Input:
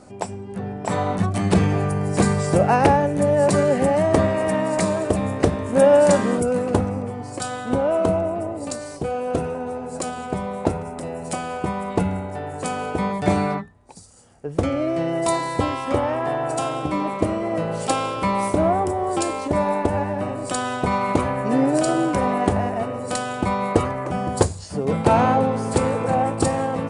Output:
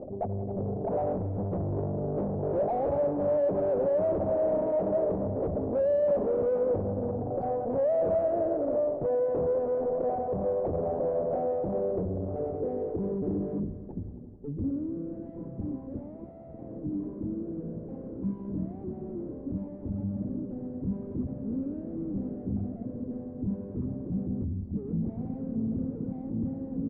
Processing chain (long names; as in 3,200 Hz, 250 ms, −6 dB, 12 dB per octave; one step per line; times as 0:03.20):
spectral envelope exaggerated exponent 3
reversed playback
upward compression, threshold −21 dBFS
reversed playback
tube saturation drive 31 dB, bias 0.6
low-pass filter sweep 620 Hz → 230 Hz, 0:11.20–0:14.86
on a send: echo machine with several playback heads 89 ms, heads all three, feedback 65%, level −19.5 dB
on the sum: downsampling to 11,025 Hz